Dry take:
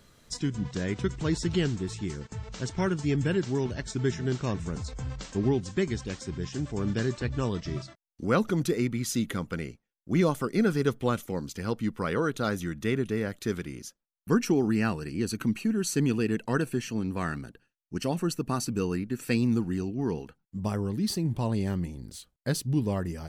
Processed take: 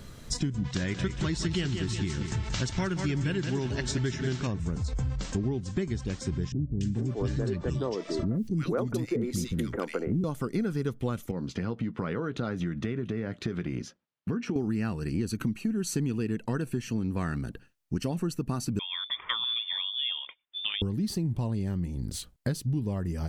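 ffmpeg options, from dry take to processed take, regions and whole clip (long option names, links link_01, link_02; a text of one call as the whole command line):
ffmpeg -i in.wav -filter_complex "[0:a]asettb=1/sr,asplit=3[link_01][link_02][link_03];[link_01]atrim=end=0.644[link_04];[link_02]atrim=start=0.64:end=4.47,asetpts=PTS-STARTPTS,afade=type=in:duration=0.004:curve=qsin,afade=type=out:start_time=3.826:duration=0.004:curve=qsin,equalizer=frequency=3100:width=0.36:gain=9.5,bandreject=frequency=450:width=9.8,aecho=1:1:181|362|543|724:0.355|0.128|0.046|0.0166,atrim=end_sample=168903[link_05];[link_03]atrim=start=4.466[link_06];[link_04][link_05]acrossfade=duration=0.004:curve1=hsin:curve2=qsin[link_07];[link_07][link_06]acrossfade=duration=0.004:curve1=qsin:curve2=hsin,asettb=1/sr,asplit=3[link_08][link_09][link_10];[link_08]atrim=end=6.524[link_11];[link_09]atrim=start=6.52:end=10.24,asetpts=PTS-STARTPTS,afade=type=in:duration=0.004:curve=qsin,afade=type=out:start_time=3.716:duration=0.004:curve=qsin,equalizer=frequency=470:width_type=o:width=2:gain=6.5,acompressor=mode=upward:threshold=-28dB:ratio=2.5:attack=3.2:release=140:knee=2.83:detection=peak,acrossover=split=290|1700[link_12][link_13][link_14];[link_14]adelay=290[link_15];[link_13]adelay=430[link_16];[link_12][link_16][link_15]amix=inputs=3:normalize=0,atrim=end_sample=164052[link_17];[link_10]atrim=start=10.236[link_18];[link_11][link_17]acrossfade=duration=0.004:curve1=hsin:curve2=qsin[link_19];[link_19][link_18]acrossfade=duration=0.004:curve1=qsin:curve2=hsin,asettb=1/sr,asplit=3[link_20][link_21][link_22];[link_20]atrim=end=11.314[link_23];[link_21]atrim=start=11.31:end=14.56,asetpts=PTS-STARTPTS,afade=type=in:duration=0.004:curve=qsin,afade=type=out:start_time=3.246:duration=0.004:curve=qsin,acompressor=threshold=-35dB:ratio=3:attack=3.2:release=140:knee=1:detection=peak,highpass=110,lowpass=3400,asplit=2[link_24][link_25];[link_25]adelay=17,volume=-14dB[link_26];[link_24][link_26]amix=inputs=2:normalize=0,atrim=end_sample=143325[link_27];[link_22]atrim=start=14.556[link_28];[link_23][link_27]acrossfade=duration=0.004:curve1=hsin:curve2=qsin[link_29];[link_29][link_28]acrossfade=duration=0.004:curve1=qsin:curve2=hsin,asettb=1/sr,asplit=3[link_30][link_31][link_32];[link_30]atrim=end=18.794[link_33];[link_31]atrim=start=18.79:end=20.82,asetpts=PTS-STARTPTS,afade=type=in:duration=0.004:curve=qsin,afade=type=out:start_time=2.026:duration=0.004:curve=qsin,highpass=frequency=530:poles=1,lowpass=frequency=3100:width_type=q:width=0.5098,lowpass=frequency=3100:width_type=q:width=0.6013,lowpass=frequency=3100:width_type=q:width=0.9,lowpass=frequency=3100:width_type=q:width=2.563,afreqshift=-3700[link_34];[link_32]atrim=start=20.816[link_35];[link_33][link_34]acrossfade=duration=0.004:curve1=hsin:curve2=qsin[link_36];[link_36][link_35]acrossfade=duration=0.004:curve1=qsin:curve2=hsin,lowshelf=frequency=250:gain=8.5,acompressor=threshold=-35dB:ratio=6,volume=7.5dB" out.wav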